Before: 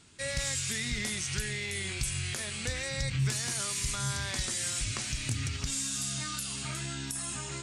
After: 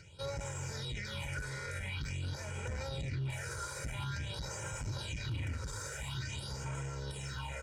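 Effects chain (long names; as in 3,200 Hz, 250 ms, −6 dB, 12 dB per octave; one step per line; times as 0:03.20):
lower of the sound and its delayed copy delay 1.3 ms
high-pass filter 65 Hz 12 dB per octave
high-frequency loss of the air 56 metres
upward compression, threshold −52 dBFS
all-pass phaser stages 6, 0.48 Hz, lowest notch 190–4,100 Hz
slap from a distant wall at 150 metres, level −11 dB
brickwall limiter −33 dBFS, peak gain reduction 10 dB
high-shelf EQ 5,200 Hz −9.5 dB
comb filter 2.1 ms, depth 87%
saturating transformer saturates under 150 Hz
level +2 dB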